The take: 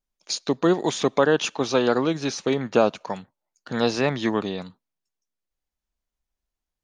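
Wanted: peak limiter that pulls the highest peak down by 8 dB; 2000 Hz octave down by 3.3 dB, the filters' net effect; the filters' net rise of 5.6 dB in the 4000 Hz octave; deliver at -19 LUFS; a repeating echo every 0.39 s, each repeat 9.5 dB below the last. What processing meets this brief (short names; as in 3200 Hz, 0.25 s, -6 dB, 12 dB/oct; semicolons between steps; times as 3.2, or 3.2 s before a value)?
bell 2000 Hz -7 dB; bell 4000 Hz +8.5 dB; limiter -12.5 dBFS; feedback echo 0.39 s, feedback 33%, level -9.5 dB; gain +6 dB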